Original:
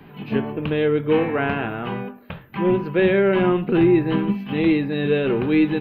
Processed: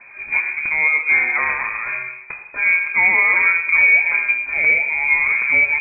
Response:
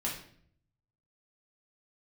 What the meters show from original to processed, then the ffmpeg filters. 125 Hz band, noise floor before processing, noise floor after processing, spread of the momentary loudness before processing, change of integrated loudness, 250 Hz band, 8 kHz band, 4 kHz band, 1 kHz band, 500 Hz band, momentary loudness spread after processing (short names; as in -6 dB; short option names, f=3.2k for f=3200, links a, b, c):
under -20 dB, -45 dBFS, -39 dBFS, 11 LU, +5.5 dB, under -25 dB, n/a, under -40 dB, +1.5 dB, -18.0 dB, 11 LU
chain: -filter_complex "[0:a]asplit=2[a][b];[1:a]atrim=start_sample=2205,asetrate=29106,aresample=44100,adelay=83[c];[b][c]afir=irnorm=-1:irlink=0,volume=-17.5dB[d];[a][d]amix=inputs=2:normalize=0,lowpass=f=2.2k:t=q:w=0.5098,lowpass=f=2.2k:t=q:w=0.6013,lowpass=f=2.2k:t=q:w=0.9,lowpass=f=2.2k:t=q:w=2.563,afreqshift=-2600,volume=2dB"